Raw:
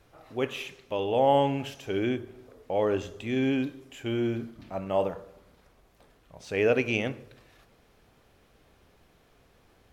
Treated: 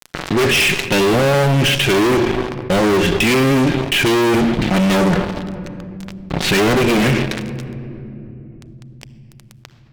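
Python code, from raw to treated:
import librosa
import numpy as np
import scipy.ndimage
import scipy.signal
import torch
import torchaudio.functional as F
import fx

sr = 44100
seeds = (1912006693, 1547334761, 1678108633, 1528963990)

p1 = fx.tracing_dist(x, sr, depth_ms=0.28)
p2 = scipy.signal.sosfilt(scipy.signal.butter(4, 4100.0, 'lowpass', fs=sr, output='sos'), p1)
p3 = fx.env_lowpass_down(p2, sr, base_hz=1100.0, full_db=-22.0)
p4 = fx.band_shelf(p3, sr, hz=760.0, db=-11.5, octaves=1.7)
p5 = p4 + 0.6 * np.pad(p4, (int(5.5 * sr / 1000.0), 0))[:len(p4)]
p6 = fx.dynamic_eq(p5, sr, hz=2200.0, q=0.82, threshold_db=-52.0, ratio=4.0, max_db=4)
p7 = fx.rider(p6, sr, range_db=3, speed_s=2.0)
p8 = p6 + (p7 * 10.0 ** (-2.5 / 20.0))
p9 = fx.fuzz(p8, sr, gain_db=39.0, gate_db=-46.0)
p10 = fx.room_shoebox(p9, sr, seeds[0], volume_m3=3000.0, walls='mixed', distance_m=0.31)
y = fx.env_flatten(p10, sr, amount_pct=50)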